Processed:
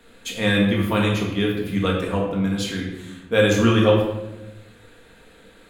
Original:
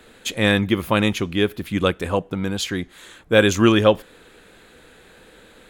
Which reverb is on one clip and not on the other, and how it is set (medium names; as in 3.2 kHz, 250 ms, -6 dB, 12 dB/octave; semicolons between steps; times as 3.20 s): simulated room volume 390 m³, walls mixed, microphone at 1.7 m; trim -6.5 dB